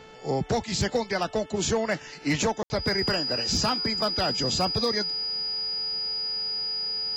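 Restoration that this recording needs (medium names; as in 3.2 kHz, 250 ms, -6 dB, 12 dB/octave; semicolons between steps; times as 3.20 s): clip repair -17.5 dBFS; de-hum 439.3 Hz, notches 8; band-stop 4.9 kHz, Q 30; room tone fill 2.63–2.70 s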